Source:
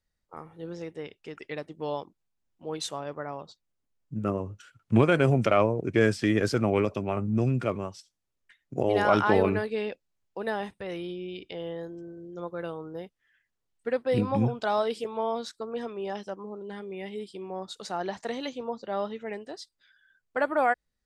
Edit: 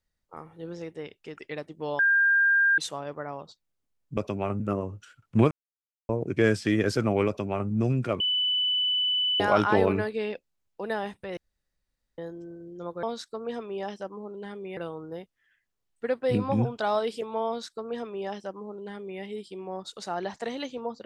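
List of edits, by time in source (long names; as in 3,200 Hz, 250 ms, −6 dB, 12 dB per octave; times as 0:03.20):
0:01.99–0:02.78: beep over 1,600 Hz −18 dBFS
0:05.08–0:05.66: silence
0:06.84–0:07.27: duplicate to 0:04.17
0:07.77–0:08.97: beep over 2,990 Hz −22.5 dBFS
0:10.94–0:11.75: fill with room tone
0:15.30–0:17.04: duplicate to 0:12.60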